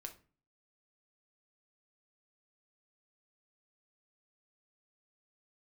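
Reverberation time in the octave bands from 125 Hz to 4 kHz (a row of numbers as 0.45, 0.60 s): 0.60, 0.55, 0.40, 0.35, 0.35, 0.25 s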